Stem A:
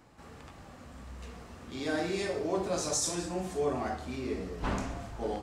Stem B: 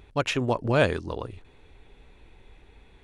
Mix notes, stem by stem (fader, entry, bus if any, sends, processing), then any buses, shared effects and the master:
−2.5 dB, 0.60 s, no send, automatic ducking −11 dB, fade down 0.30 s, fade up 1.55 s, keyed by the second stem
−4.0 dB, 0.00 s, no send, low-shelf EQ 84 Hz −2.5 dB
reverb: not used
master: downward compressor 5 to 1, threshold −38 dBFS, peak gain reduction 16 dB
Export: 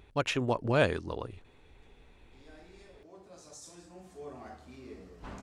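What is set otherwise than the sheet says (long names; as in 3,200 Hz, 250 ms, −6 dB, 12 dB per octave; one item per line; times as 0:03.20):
stem A −2.5 dB → −12.5 dB
master: missing downward compressor 5 to 1, threshold −38 dBFS, peak gain reduction 16 dB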